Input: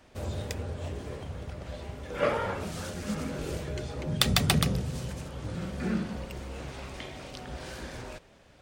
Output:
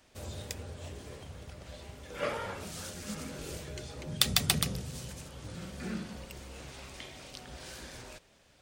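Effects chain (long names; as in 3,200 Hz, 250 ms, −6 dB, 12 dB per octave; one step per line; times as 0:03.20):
high-shelf EQ 2,800 Hz +10.5 dB
level −8 dB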